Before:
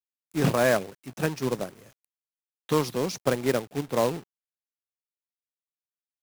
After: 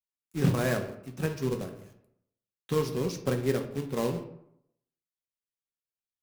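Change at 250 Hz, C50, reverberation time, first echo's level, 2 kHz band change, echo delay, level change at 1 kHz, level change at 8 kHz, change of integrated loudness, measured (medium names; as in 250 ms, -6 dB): -2.0 dB, 9.5 dB, 0.75 s, no echo, -6.5 dB, no echo, -8.0 dB, -6.0 dB, -3.5 dB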